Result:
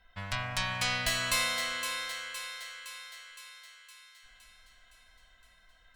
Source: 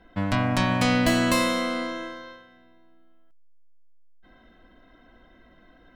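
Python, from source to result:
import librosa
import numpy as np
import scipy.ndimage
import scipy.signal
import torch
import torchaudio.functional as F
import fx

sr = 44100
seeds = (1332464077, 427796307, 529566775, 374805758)

y = fx.tone_stack(x, sr, knobs='10-0-10')
y = fx.echo_thinned(y, sr, ms=514, feedback_pct=60, hz=600.0, wet_db=-7)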